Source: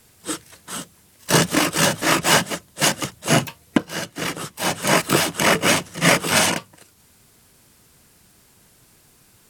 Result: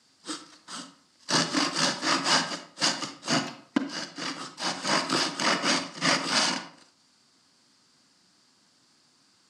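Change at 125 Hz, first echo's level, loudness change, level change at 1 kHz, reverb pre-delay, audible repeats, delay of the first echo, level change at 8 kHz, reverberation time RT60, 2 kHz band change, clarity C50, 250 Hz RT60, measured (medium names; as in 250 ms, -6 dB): -14.5 dB, no echo, -7.0 dB, -6.5 dB, 36 ms, no echo, no echo, -9.0 dB, 0.55 s, -8.0 dB, 9.5 dB, 0.50 s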